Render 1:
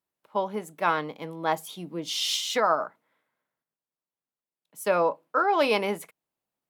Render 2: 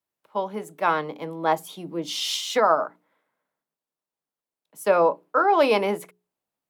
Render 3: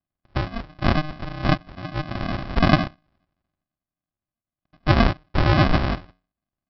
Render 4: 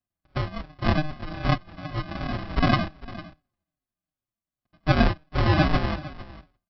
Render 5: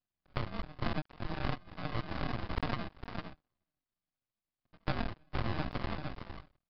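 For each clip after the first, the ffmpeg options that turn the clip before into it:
-filter_complex "[0:a]bandreject=f=60:t=h:w=6,bandreject=f=120:t=h:w=6,bandreject=f=180:t=h:w=6,bandreject=f=240:t=h:w=6,bandreject=f=300:t=h:w=6,bandreject=f=360:t=h:w=6,bandreject=f=420:t=h:w=6,acrossover=split=180|1300|7000[a][b][c][d];[b]dynaudnorm=f=230:g=7:m=5dB[e];[a][e][c][d]amix=inputs=4:normalize=0"
-af "aresample=11025,acrusher=samples=24:mix=1:aa=0.000001,aresample=44100,equalizer=f=1.2k:t=o:w=2.5:g=6.5,volume=1dB"
-filter_complex "[0:a]aecho=1:1:453:0.133,asplit=2[a][b];[b]adelay=5.1,afreqshift=-2.6[c];[a][c]amix=inputs=2:normalize=1"
-af "aeval=exprs='max(val(0),0)':c=same,acompressor=threshold=-31dB:ratio=8,aresample=11025,aresample=44100,volume=1.5dB"

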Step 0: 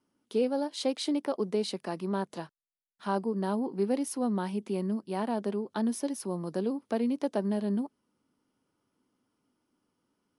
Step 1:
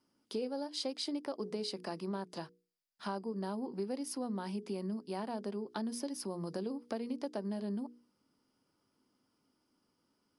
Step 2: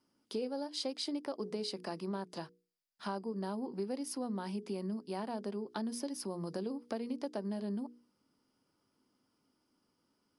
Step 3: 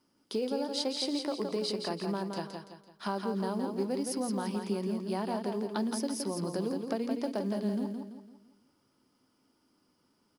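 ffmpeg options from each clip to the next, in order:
-af "equalizer=f=4.9k:t=o:w=0.22:g=11,bandreject=f=60:t=h:w=6,bandreject=f=120:t=h:w=6,bandreject=f=180:t=h:w=6,bandreject=f=240:t=h:w=6,bandreject=f=300:t=h:w=6,bandreject=f=360:t=h:w=6,bandreject=f=420:t=h:w=6,bandreject=f=480:t=h:w=6,acompressor=threshold=-37dB:ratio=3"
-af anull
-filter_complex "[0:a]asplit=2[a][b];[b]acrusher=bits=5:mode=log:mix=0:aa=0.000001,volume=-9dB[c];[a][c]amix=inputs=2:normalize=0,aecho=1:1:168|336|504|672|840:0.531|0.212|0.0849|0.034|0.0136,volume=2dB"

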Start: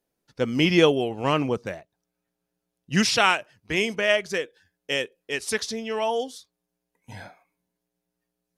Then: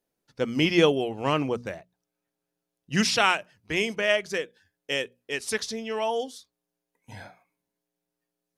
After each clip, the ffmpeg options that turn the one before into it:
-af "bandreject=f=60:t=h:w=6,bandreject=f=120:t=h:w=6,bandreject=f=180:t=h:w=6,bandreject=f=240:t=h:w=6,volume=-2dB"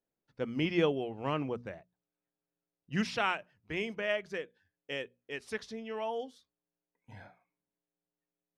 -af "bass=f=250:g=2,treble=f=4k:g=-13,volume=-8.5dB"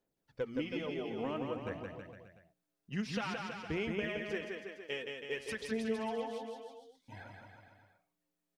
-filter_complex "[0:a]acompressor=threshold=-38dB:ratio=12,aphaser=in_gain=1:out_gain=1:delay=5:decay=0.52:speed=0.52:type=sinusoidal,asplit=2[a][b];[b]aecho=0:1:170|323|460.7|584.6|696.2:0.631|0.398|0.251|0.158|0.1[c];[a][c]amix=inputs=2:normalize=0,volume=1dB"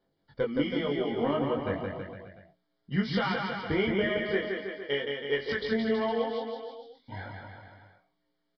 -filter_complex "[0:a]asplit=2[a][b];[b]adelay=21,volume=-2.5dB[c];[a][c]amix=inputs=2:normalize=0,aresample=11025,aresample=44100,asuperstop=centerf=2600:order=12:qfactor=5.7,volume=7.5dB"

